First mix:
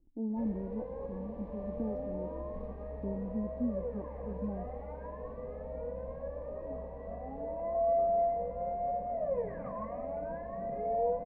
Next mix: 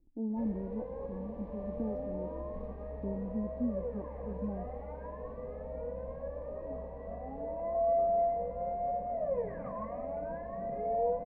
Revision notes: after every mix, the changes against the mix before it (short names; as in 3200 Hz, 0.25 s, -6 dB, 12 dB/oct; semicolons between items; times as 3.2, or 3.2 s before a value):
none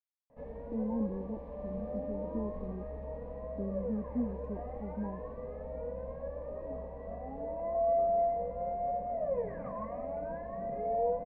speech: entry +0.55 s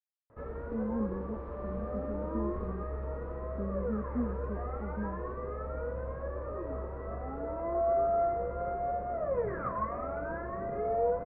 background: remove fixed phaser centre 360 Hz, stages 6